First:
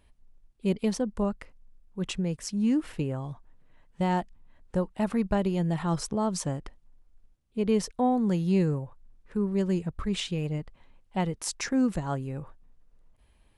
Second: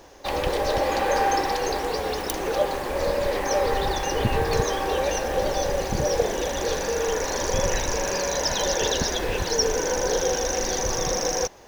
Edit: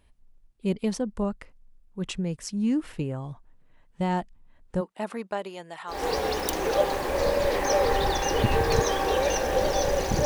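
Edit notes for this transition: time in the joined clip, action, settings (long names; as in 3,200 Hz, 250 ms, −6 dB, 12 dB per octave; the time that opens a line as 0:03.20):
first
0:04.80–0:06.07: high-pass filter 260 Hz → 1,100 Hz
0:05.97: continue with second from 0:01.78, crossfade 0.20 s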